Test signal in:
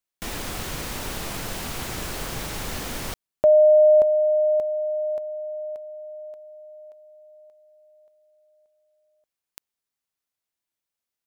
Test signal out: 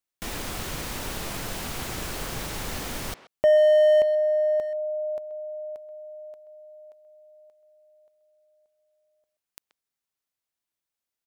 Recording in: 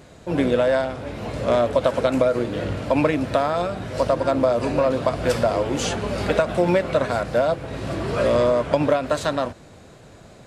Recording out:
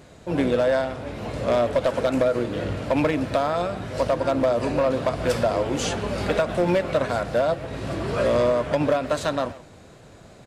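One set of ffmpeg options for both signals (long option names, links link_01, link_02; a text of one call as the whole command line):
ffmpeg -i in.wav -filter_complex "[0:a]asoftclip=type=hard:threshold=-12.5dB,asplit=2[link_01][link_02];[link_02]adelay=130,highpass=300,lowpass=3400,asoftclip=type=hard:threshold=-22.5dB,volume=-14dB[link_03];[link_01][link_03]amix=inputs=2:normalize=0,volume=-1.5dB" out.wav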